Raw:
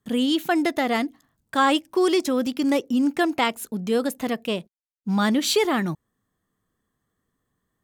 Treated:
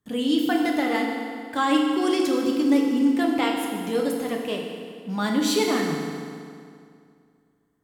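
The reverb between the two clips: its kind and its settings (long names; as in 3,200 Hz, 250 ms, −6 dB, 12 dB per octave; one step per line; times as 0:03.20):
feedback delay network reverb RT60 2.3 s, low-frequency decay 1.05×, high-frequency decay 0.8×, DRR −0.5 dB
level −5 dB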